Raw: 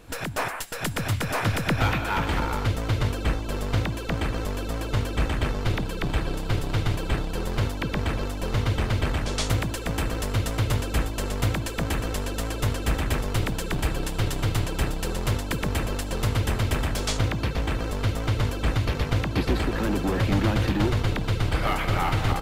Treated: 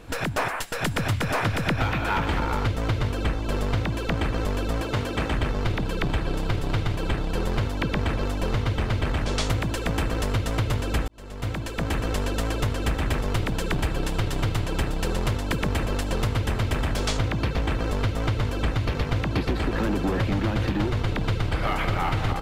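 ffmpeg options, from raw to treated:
ffmpeg -i in.wav -filter_complex "[0:a]asettb=1/sr,asplit=3[link_01][link_02][link_03];[link_01]atrim=end=4.814[link_04];[link_02]atrim=start=4.81:end=5.32,asetpts=PTS-STARTPTS,afade=type=in:duration=0.004:curve=qsin,afade=type=out:start_time=0.506:duration=0.004:curve=qsin,highpass=frequency=140:poles=1[link_05];[link_03]atrim=start=5.316[link_06];[link_04][link_05]acrossfade=duration=0.004:curve1=hsin:curve2=qsin[link_07];[link_07][link_06]acrossfade=duration=0.004:curve1=qsin:curve2=hsin,asplit=2[link_08][link_09];[link_08]atrim=end=11.08,asetpts=PTS-STARTPTS,afade=type=out:start_time=11.076:duration=0.004:curve=hsin[link_10];[link_09]atrim=start=11.08,asetpts=PTS-STARTPTS,afade=type=in:duration=1.12[link_11];[link_10][link_11]concat=n=2:v=0:a=1,highshelf=frequency=6400:gain=-8,acompressor=threshold=-25dB:ratio=6,volume=4.5dB" out.wav

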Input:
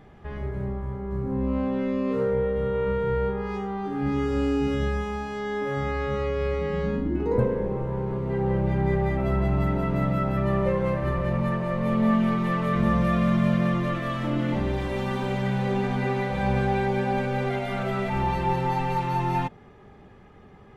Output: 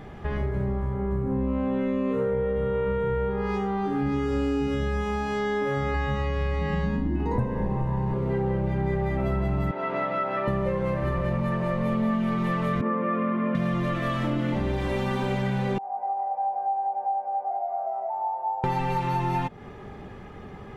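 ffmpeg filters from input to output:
ffmpeg -i in.wav -filter_complex "[0:a]asettb=1/sr,asplit=3[link_01][link_02][link_03];[link_01]atrim=end=0.944[link_04];[link_02]atrim=start=0.94:end=3.31,asetpts=PTS-STARTPTS,afade=type=in:duration=0.004:curve=qsin,afade=type=out:start_time=2.366:duration=0.004:curve=qsin,equalizer=frequency=4900:width_type=o:width=0.36:gain=-14.5[link_05];[link_03]atrim=start=3.306[link_06];[link_04][link_05]acrossfade=duration=0.004:curve1=hsin:curve2=qsin[link_07];[link_07][link_06]acrossfade=duration=0.004:curve1=qsin:curve2=hsin,asettb=1/sr,asplit=3[link_08][link_09][link_10];[link_08]atrim=end=5.944[link_11];[link_09]atrim=start=5.94:end=8.14,asetpts=PTS-STARTPTS,afade=type=in:duration=0.004:curve=qsin,afade=type=out:start_time=2.196:duration=0.004:curve=qsin,aecho=1:1:1.1:0.61,atrim=end_sample=97020[link_12];[link_10]atrim=start=8.136[link_13];[link_11][link_12]acrossfade=duration=0.004:curve1=hsin:curve2=qsin[link_14];[link_14][link_13]acrossfade=duration=0.004:curve1=qsin:curve2=hsin,asettb=1/sr,asplit=3[link_15][link_16][link_17];[link_15]atrim=end=9.714[link_18];[link_16]atrim=start=9.71:end=10.48,asetpts=PTS-STARTPTS,afade=type=in:duration=0.004:curve=qsin,afade=type=out:start_time=0.766:duration=0.004:curve=qsin,highpass=520,lowpass=3600[link_19];[link_17]atrim=start=10.476[link_20];[link_18][link_19]acrossfade=duration=0.004:curve1=hsin:curve2=qsin[link_21];[link_21][link_20]acrossfade=duration=0.004:curve1=qsin:curve2=hsin,asettb=1/sr,asplit=3[link_22][link_23][link_24];[link_22]atrim=end=12.814[link_25];[link_23]atrim=start=12.81:end=13.55,asetpts=PTS-STARTPTS,afade=type=in:duration=0.004:curve=qsin,afade=type=out:start_time=0.736:duration=0.004:curve=qsin,highpass=frequency=250:width=0.5412,highpass=frequency=250:width=1.3066,equalizer=frequency=250:width_type=q:width=4:gain=8,equalizer=frequency=470:width_type=q:width=4:gain=8,equalizer=frequency=700:width_type=q:width=4:gain=-10,equalizer=frequency=1100:width_type=q:width=4:gain=4,equalizer=frequency=1600:width_type=q:width=4:gain=-4,lowpass=frequency=2200:width=0.5412,lowpass=frequency=2200:width=1.3066[link_26];[link_24]atrim=start=13.546[link_27];[link_25][link_26]acrossfade=duration=0.004:curve1=hsin:curve2=qsin[link_28];[link_28][link_27]acrossfade=duration=0.004:curve1=qsin:curve2=hsin,asettb=1/sr,asplit=3[link_29][link_30][link_31];[link_29]atrim=end=15.784[link_32];[link_30]atrim=start=15.78:end=18.64,asetpts=PTS-STARTPTS,afade=type=in:duration=0.004:curve=qsin,afade=type=out:start_time=2.856:duration=0.004:curve=qsin,asuperpass=centerf=750:order=4:qfactor=4.5[link_33];[link_31]atrim=start=18.636[link_34];[link_32][link_33]acrossfade=duration=0.004:curve1=hsin:curve2=qsin[link_35];[link_35][link_34]acrossfade=duration=0.004:curve1=qsin:curve2=hsin,acompressor=threshold=-33dB:ratio=4,volume=8.5dB" out.wav

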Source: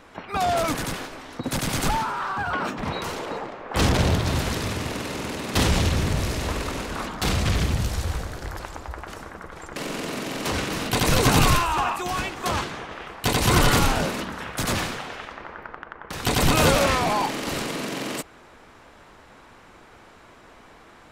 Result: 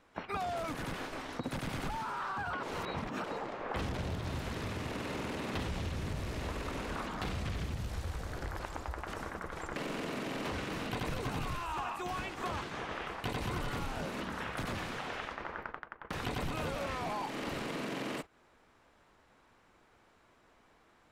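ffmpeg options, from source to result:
ffmpeg -i in.wav -filter_complex "[0:a]asplit=3[link_01][link_02][link_03];[link_01]atrim=end=2.632[link_04];[link_02]atrim=start=2.628:end=3.242,asetpts=PTS-STARTPTS,areverse[link_05];[link_03]atrim=start=3.238[link_06];[link_04][link_05]acrossfade=duration=0.004:curve1=hsin:curve2=hsin[link_07];[link_07][link_06]acrossfade=duration=0.004:curve1=hsin:curve2=hsin,acompressor=threshold=-35dB:ratio=6,agate=range=-16dB:threshold=-41dB:ratio=16:detection=peak,acrossover=split=3400[link_08][link_09];[link_09]acompressor=threshold=-52dB:ratio=4:attack=1:release=60[link_10];[link_08][link_10]amix=inputs=2:normalize=0" out.wav

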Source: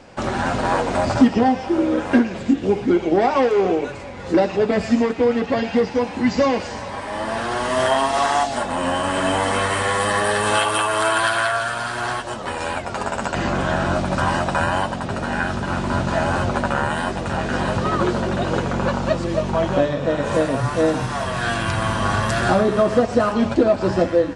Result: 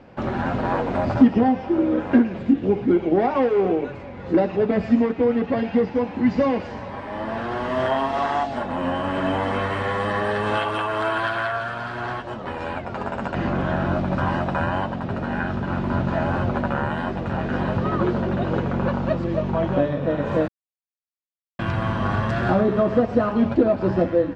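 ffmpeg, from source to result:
ffmpeg -i in.wav -filter_complex "[0:a]asplit=3[link_01][link_02][link_03];[link_01]atrim=end=20.48,asetpts=PTS-STARTPTS,afade=type=out:start_time=20.476:duration=0.004:curve=hsin[link_04];[link_02]atrim=start=20.48:end=21.59,asetpts=PTS-STARTPTS,volume=0[link_05];[link_03]atrim=start=21.59,asetpts=PTS-STARTPTS,afade=type=in:duration=0.004:curve=hsin[link_06];[link_04][link_05][link_06]concat=n=3:v=0:a=1,lowpass=3000,equalizer=frequency=170:width=0.4:gain=6,volume=-5.5dB" out.wav

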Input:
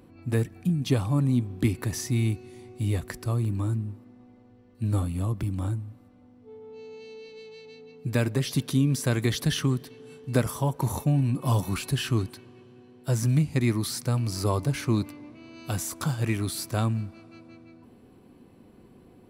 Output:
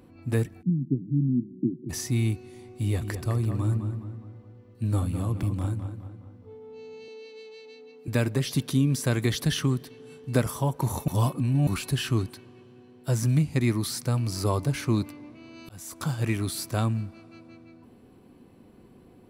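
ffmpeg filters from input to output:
ffmpeg -i in.wav -filter_complex "[0:a]asplit=3[link_01][link_02][link_03];[link_01]afade=type=out:start_time=0.61:duration=0.02[link_04];[link_02]asuperpass=centerf=220:order=12:qfactor=0.93,afade=type=in:start_time=0.61:duration=0.02,afade=type=out:start_time=1.89:duration=0.02[link_05];[link_03]afade=type=in:start_time=1.89:duration=0.02[link_06];[link_04][link_05][link_06]amix=inputs=3:normalize=0,asettb=1/sr,asplit=3[link_07][link_08][link_09];[link_07]atrim=end=2.644[link_10];[link_08]atrim=start=2.64:end=6.55,asetpts=PTS-STARTPTS,afade=type=in:duration=0.004:curve=qsin,afade=type=out:start_time=3.906:duration=0.004:curve=qsin,asplit=2[link_11][link_12];[link_12]adelay=208,lowpass=frequency=3000:poles=1,volume=-7.5dB,asplit=2[link_13][link_14];[link_14]adelay=208,lowpass=frequency=3000:poles=1,volume=0.48,asplit=2[link_15][link_16];[link_16]adelay=208,lowpass=frequency=3000:poles=1,volume=0.48,asplit=2[link_17][link_18];[link_18]adelay=208,lowpass=frequency=3000:poles=1,volume=0.48,asplit=2[link_19][link_20];[link_20]adelay=208,lowpass=frequency=3000:poles=1,volume=0.48,asplit=2[link_21][link_22];[link_22]adelay=208,lowpass=frequency=3000:poles=1,volume=0.48[link_23];[link_11][link_13][link_15][link_17][link_19][link_21][link_23]amix=inputs=7:normalize=0,atrim=end_sample=172431[link_24];[link_09]atrim=start=6.546[link_25];[link_10][link_24]acrossfade=duration=0.004:curve1=hsin:curve2=qsin[link_26];[link_26][link_25]acrossfade=duration=0.004:curve1=qsin:curve2=hsin,asettb=1/sr,asplit=3[link_27][link_28][link_29];[link_27]atrim=end=7.084[link_30];[link_28]atrim=start=7.08:end=8.08,asetpts=PTS-STARTPTS,afade=type=in:duration=0.004:curve=qsin,afade=type=out:start_time=0.996:duration=0.004:curve=qsin,highpass=frequency=250:width=0.5412,highpass=frequency=250:width=1.3066[link_31];[link_29]atrim=start=8.076[link_32];[link_30][link_31]acrossfade=duration=0.004:curve1=hsin:curve2=qsin[link_33];[link_33][link_32]acrossfade=duration=0.004:curve1=qsin:curve2=hsin,asplit=4[link_34][link_35][link_36][link_37];[link_34]atrim=end=11.082[link_38];[link_35]atrim=start=11.078:end=11.672,asetpts=PTS-STARTPTS,areverse[link_39];[link_36]atrim=start=11.668:end=15.69,asetpts=PTS-STARTPTS,afade=type=out:start_time=4.018:duration=0.004:curve=hsin[link_40];[link_37]atrim=start=15.69,asetpts=PTS-STARTPTS,afade=type=in:duration=0.59:curve=qsin[link_41];[link_38][link_39]acrossfade=duration=0.004:curve1=hsin:curve2=hsin[link_42];[link_40][link_41]concat=n=2:v=0:a=1[link_43];[link_42][link_43]acrossfade=duration=0.004:curve1=hsin:curve2=hsin" out.wav

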